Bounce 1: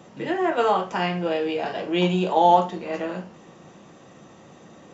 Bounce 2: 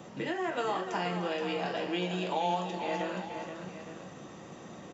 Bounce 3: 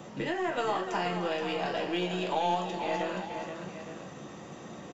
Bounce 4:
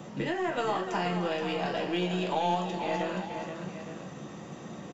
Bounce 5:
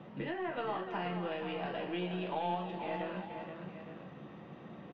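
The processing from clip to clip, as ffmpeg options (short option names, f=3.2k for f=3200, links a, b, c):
-filter_complex "[0:a]acrossover=split=1200|4700[a][b][c];[a]acompressor=threshold=-34dB:ratio=4[d];[b]acompressor=threshold=-40dB:ratio=4[e];[c]acompressor=threshold=-51dB:ratio=4[f];[d][e][f]amix=inputs=3:normalize=0,aecho=1:1:301|475|864:0.237|0.398|0.224"
-filter_complex "[0:a]asplit=2[a][b];[b]aeval=exprs='clip(val(0),-1,0.01)':c=same,volume=-11dB[c];[a][c]amix=inputs=2:normalize=0,asplit=2[d][e];[e]adelay=14,volume=-13dB[f];[d][f]amix=inputs=2:normalize=0"
-af "equalizer=f=170:t=o:w=1.2:g=4.5"
-af "lowpass=f=3.3k:w=0.5412,lowpass=f=3.3k:w=1.3066,volume=-7dB"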